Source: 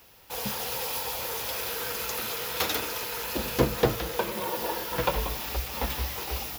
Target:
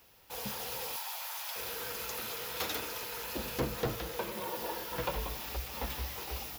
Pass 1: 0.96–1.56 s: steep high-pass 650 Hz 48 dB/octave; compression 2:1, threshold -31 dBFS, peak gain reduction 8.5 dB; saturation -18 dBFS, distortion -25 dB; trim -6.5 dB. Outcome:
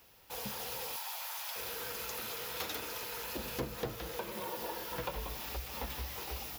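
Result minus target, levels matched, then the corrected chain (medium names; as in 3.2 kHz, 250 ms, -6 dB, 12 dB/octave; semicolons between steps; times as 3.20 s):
compression: peak gain reduction +8.5 dB
0.96–1.56 s: steep high-pass 650 Hz 48 dB/octave; saturation -18 dBFS, distortion -14 dB; trim -6.5 dB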